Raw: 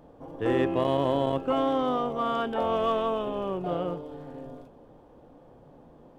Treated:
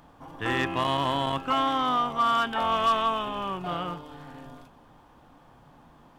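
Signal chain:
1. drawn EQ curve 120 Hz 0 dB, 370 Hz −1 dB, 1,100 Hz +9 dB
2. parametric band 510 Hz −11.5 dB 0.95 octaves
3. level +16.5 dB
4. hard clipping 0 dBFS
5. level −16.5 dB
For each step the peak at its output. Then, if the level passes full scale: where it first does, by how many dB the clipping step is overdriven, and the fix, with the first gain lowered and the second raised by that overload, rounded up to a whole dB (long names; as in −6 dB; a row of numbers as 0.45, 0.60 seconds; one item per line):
−9.5, −12.0, +4.5, 0.0, −16.5 dBFS
step 3, 4.5 dB
step 3 +11.5 dB, step 5 −11.5 dB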